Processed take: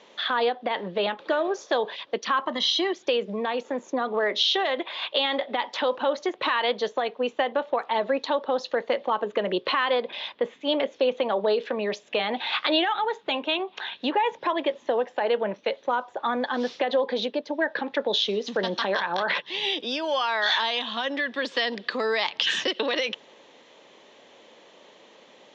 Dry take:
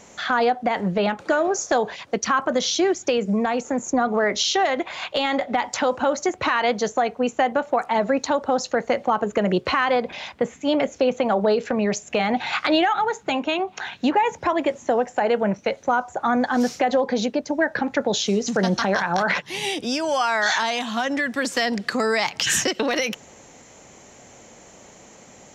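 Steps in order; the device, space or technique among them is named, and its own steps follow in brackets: 2.45–2.93 comb 1 ms, depth 74%; phone earpiece (speaker cabinet 410–4000 Hz, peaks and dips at 740 Hz -8 dB, 1400 Hz -7 dB, 2200 Hz -5 dB, 3500 Hz +7 dB)

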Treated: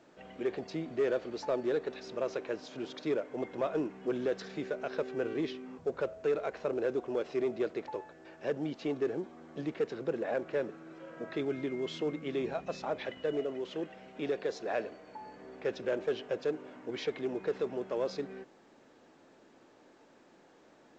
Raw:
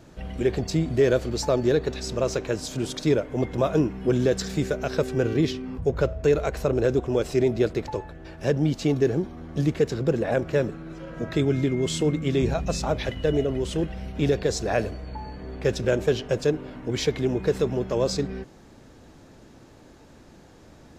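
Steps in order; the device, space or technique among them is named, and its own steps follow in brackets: 13.4–15.21 HPF 150 Hz 6 dB/oct; telephone (BPF 310–3100 Hz; soft clip -14.5 dBFS, distortion -20 dB; gain -7 dB; A-law 128 kbps 16000 Hz)

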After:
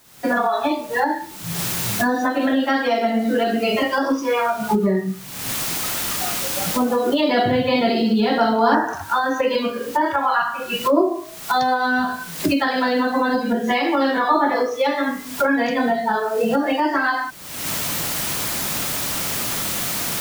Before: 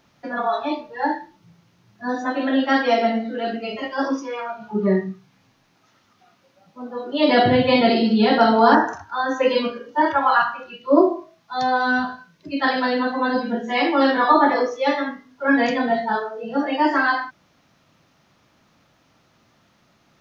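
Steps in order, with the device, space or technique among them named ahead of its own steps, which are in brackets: cheap recorder with automatic gain (white noise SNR 31 dB; recorder AGC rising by 52 dB/s); gain -2.5 dB

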